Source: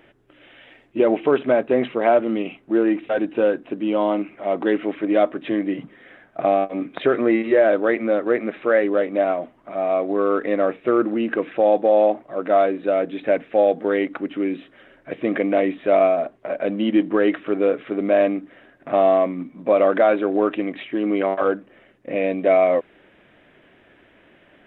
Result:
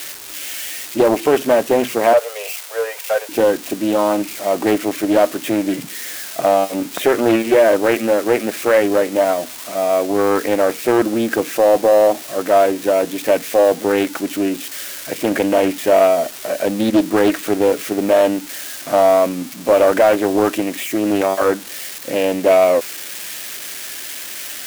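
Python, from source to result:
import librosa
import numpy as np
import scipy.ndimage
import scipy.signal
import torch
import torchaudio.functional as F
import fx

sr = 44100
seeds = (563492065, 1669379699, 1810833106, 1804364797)

p1 = x + 0.5 * 10.0 ** (-21.0 / 20.0) * np.diff(np.sign(x), prepend=np.sign(x[:1]))
p2 = fx.steep_highpass(p1, sr, hz=440.0, slope=96, at=(2.13, 3.29))
p3 = 10.0 ** (-10.5 / 20.0) * (np.abs((p2 / 10.0 ** (-10.5 / 20.0) + 3.0) % 4.0 - 2.0) - 1.0)
p4 = p2 + (p3 * 10.0 ** (-4.0 / 20.0))
y = fx.doppler_dist(p4, sr, depth_ms=0.37)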